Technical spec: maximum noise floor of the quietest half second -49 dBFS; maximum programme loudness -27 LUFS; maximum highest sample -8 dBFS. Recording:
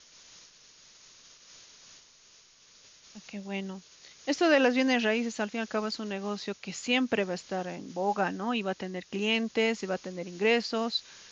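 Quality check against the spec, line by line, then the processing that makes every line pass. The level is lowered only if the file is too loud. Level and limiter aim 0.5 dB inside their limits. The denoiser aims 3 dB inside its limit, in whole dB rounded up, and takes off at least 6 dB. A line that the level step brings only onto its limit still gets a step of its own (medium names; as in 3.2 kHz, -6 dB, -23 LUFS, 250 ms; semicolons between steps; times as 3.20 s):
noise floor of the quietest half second -59 dBFS: pass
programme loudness -29.5 LUFS: pass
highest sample -12.0 dBFS: pass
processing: none needed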